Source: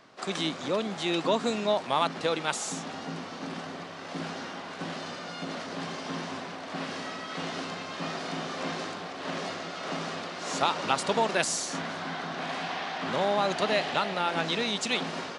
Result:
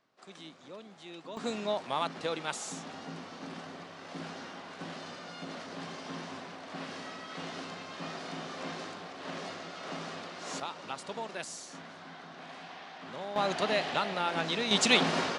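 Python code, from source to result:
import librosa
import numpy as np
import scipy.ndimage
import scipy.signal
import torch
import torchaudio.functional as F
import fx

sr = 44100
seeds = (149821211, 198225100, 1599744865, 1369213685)

y = fx.gain(x, sr, db=fx.steps((0.0, -18.5), (1.37, -6.0), (10.6, -13.0), (13.36, -3.0), (14.71, 5.0)))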